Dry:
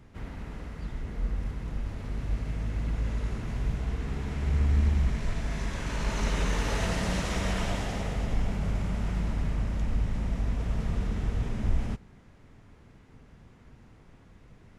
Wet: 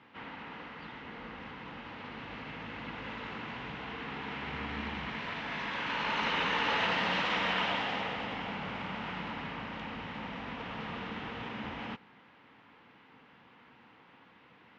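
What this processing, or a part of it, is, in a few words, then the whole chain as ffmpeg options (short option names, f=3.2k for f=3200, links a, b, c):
phone earpiece: -af "highpass=380,equalizer=f=390:t=q:w=4:g=-9,equalizer=f=630:t=q:w=4:g=-9,equalizer=f=900:t=q:w=4:g=3,equalizer=f=2.9k:t=q:w=4:g=4,lowpass=f=3.7k:w=0.5412,lowpass=f=3.7k:w=1.3066,volume=5dB"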